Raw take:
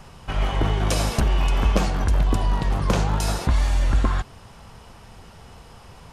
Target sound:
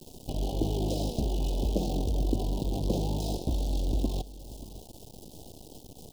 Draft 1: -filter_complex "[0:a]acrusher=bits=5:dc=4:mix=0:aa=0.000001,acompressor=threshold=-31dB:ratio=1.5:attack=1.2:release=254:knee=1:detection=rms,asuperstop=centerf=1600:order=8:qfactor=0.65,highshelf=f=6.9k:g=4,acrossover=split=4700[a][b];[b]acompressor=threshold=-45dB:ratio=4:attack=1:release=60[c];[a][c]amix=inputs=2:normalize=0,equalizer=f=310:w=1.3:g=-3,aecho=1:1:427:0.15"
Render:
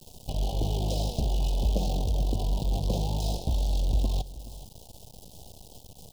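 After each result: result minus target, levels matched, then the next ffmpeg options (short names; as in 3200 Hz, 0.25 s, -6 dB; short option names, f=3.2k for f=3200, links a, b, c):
echo 0.156 s early; 250 Hz band -5.0 dB; compressor: peak gain reduction -3.5 dB
-filter_complex "[0:a]acrusher=bits=5:dc=4:mix=0:aa=0.000001,acompressor=threshold=-31dB:ratio=1.5:attack=1.2:release=254:knee=1:detection=rms,asuperstop=centerf=1600:order=8:qfactor=0.65,highshelf=f=6.9k:g=4,acrossover=split=4700[a][b];[b]acompressor=threshold=-45dB:ratio=4:attack=1:release=60[c];[a][c]amix=inputs=2:normalize=0,equalizer=f=310:w=1.3:g=-3,aecho=1:1:583:0.15"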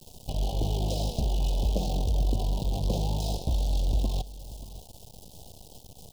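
250 Hz band -5.5 dB; compressor: peak gain reduction -3.5 dB
-filter_complex "[0:a]acrusher=bits=5:dc=4:mix=0:aa=0.000001,acompressor=threshold=-31dB:ratio=1.5:attack=1.2:release=254:knee=1:detection=rms,asuperstop=centerf=1600:order=8:qfactor=0.65,highshelf=f=6.9k:g=4,acrossover=split=4700[a][b];[b]acompressor=threshold=-45dB:ratio=4:attack=1:release=60[c];[a][c]amix=inputs=2:normalize=0,equalizer=f=310:w=1.3:g=8.5,aecho=1:1:583:0.15"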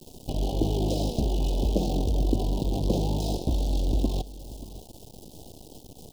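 compressor: peak gain reduction -3.5 dB
-filter_complex "[0:a]acrusher=bits=5:dc=4:mix=0:aa=0.000001,acompressor=threshold=-41.5dB:ratio=1.5:attack=1.2:release=254:knee=1:detection=rms,asuperstop=centerf=1600:order=8:qfactor=0.65,highshelf=f=6.9k:g=4,acrossover=split=4700[a][b];[b]acompressor=threshold=-45dB:ratio=4:attack=1:release=60[c];[a][c]amix=inputs=2:normalize=0,equalizer=f=310:w=1.3:g=8.5,aecho=1:1:583:0.15"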